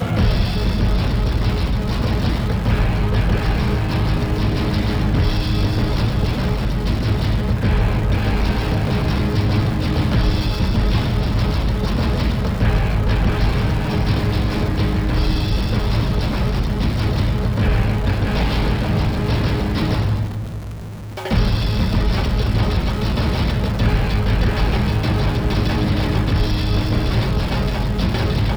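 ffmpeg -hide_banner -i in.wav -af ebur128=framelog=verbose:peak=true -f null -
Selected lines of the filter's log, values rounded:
Integrated loudness:
  I:         -19.5 LUFS
  Threshold: -29.6 LUFS
Loudness range:
  LRA:         1.4 LU
  Threshold: -39.6 LUFS
  LRA low:   -20.5 LUFS
  LRA high:  -19.1 LUFS
True peak:
  Peak:       -6.0 dBFS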